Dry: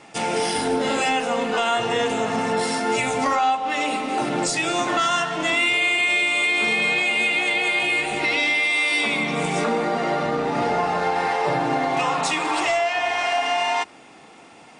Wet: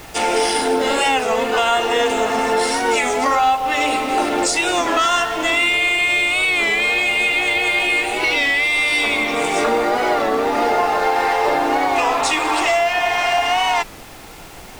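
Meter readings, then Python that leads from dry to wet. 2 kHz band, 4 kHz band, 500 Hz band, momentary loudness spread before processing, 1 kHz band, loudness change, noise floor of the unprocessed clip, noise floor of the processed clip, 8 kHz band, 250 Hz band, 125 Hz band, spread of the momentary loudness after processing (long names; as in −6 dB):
+3.5 dB, +4.0 dB, +5.0 dB, 5 LU, +5.0 dB, +4.0 dB, −47 dBFS, −37 dBFS, +5.0 dB, +2.0 dB, −5.5 dB, 3 LU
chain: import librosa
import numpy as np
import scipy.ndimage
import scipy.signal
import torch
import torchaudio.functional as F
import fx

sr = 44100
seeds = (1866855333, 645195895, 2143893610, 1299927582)

p1 = scipy.signal.sosfilt(scipy.signal.butter(4, 270.0, 'highpass', fs=sr, output='sos'), x)
p2 = fx.rider(p1, sr, range_db=10, speed_s=0.5)
p3 = p1 + (p2 * librosa.db_to_amplitude(-0.5))
p4 = fx.dmg_noise_colour(p3, sr, seeds[0], colour='pink', level_db=-38.0)
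p5 = fx.record_warp(p4, sr, rpm=33.33, depth_cents=100.0)
y = p5 * librosa.db_to_amplitude(-1.5)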